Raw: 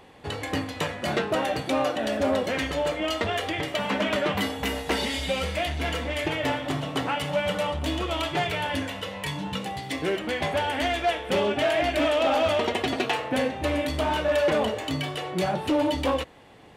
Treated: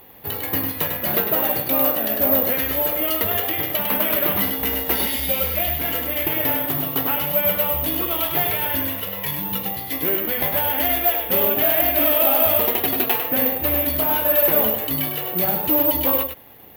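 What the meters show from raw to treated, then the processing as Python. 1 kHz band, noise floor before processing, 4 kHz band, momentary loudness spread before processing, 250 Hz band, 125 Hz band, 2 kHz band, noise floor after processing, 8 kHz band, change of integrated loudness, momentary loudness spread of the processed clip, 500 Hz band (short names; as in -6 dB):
+1.0 dB, -38 dBFS, +1.0 dB, 7 LU, +1.0 dB, +0.5 dB, +1.0 dB, -31 dBFS, +8.0 dB, +8.0 dB, 7 LU, +1.0 dB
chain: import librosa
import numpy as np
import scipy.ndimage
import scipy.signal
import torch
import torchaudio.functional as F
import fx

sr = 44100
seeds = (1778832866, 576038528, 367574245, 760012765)

y = x + 10.0 ** (-6.5 / 20.0) * np.pad(x, (int(101 * sr / 1000.0), 0))[:len(x)]
y = (np.kron(scipy.signal.resample_poly(y, 1, 3), np.eye(3)[0]) * 3)[:len(y)]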